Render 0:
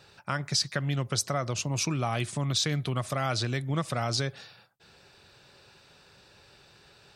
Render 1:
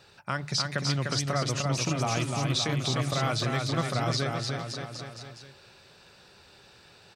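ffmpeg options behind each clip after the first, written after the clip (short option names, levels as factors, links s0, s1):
-filter_complex "[0:a]bandreject=f=50:t=h:w=6,bandreject=f=100:t=h:w=6,bandreject=f=150:t=h:w=6,aecho=1:1:300|570|813|1032|1229:0.631|0.398|0.251|0.158|0.1,acrossover=split=6200[s0][s1];[s1]acompressor=threshold=0.00794:ratio=4:attack=1:release=60[s2];[s0][s2]amix=inputs=2:normalize=0"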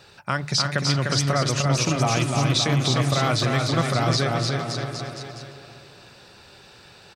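-filter_complex "[0:a]asplit=2[s0][s1];[s1]adelay=343,lowpass=f=2500:p=1,volume=0.316,asplit=2[s2][s3];[s3]adelay=343,lowpass=f=2500:p=1,volume=0.48,asplit=2[s4][s5];[s5]adelay=343,lowpass=f=2500:p=1,volume=0.48,asplit=2[s6][s7];[s7]adelay=343,lowpass=f=2500:p=1,volume=0.48,asplit=2[s8][s9];[s9]adelay=343,lowpass=f=2500:p=1,volume=0.48[s10];[s0][s2][s4][s6][s8][s10]amix=inputs=6:normalize=0,volume=2"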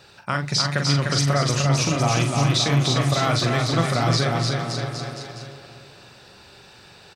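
-filter_complex "[0:a]asplit=2[s0][s1];[s1]adelay=42,volume=0.473[s2];[s0][s2]amix=inputs=2:normalize=0"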